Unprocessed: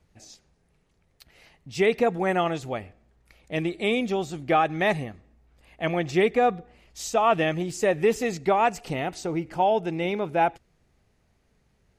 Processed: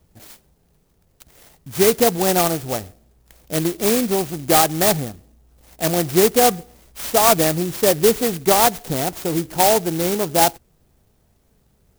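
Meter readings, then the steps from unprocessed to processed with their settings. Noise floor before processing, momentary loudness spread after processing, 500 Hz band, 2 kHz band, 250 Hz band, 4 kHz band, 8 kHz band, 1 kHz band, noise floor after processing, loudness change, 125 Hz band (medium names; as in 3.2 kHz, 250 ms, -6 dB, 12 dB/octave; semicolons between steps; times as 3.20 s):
-67 dBFS, 10 LU, +6.0 dB, +2.0 dB, +6.5 dB, +12.0 dB, +19.0 dB, +4.5 dB, -61 dBFS, +7.5 dB, +6.5 dB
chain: sampling jitter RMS 0.13 ms; trim +6.5 dB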